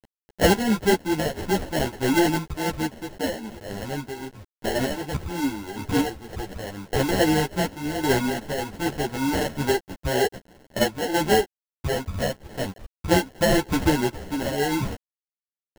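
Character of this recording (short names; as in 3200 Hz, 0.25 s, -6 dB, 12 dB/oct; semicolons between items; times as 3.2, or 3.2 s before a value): a quantiser's noise floor 8-bit, dither none; random-step tremolo; aliases and images of a low sample rate 1200 Hz, jitter 0%; a shimmering, thickened sound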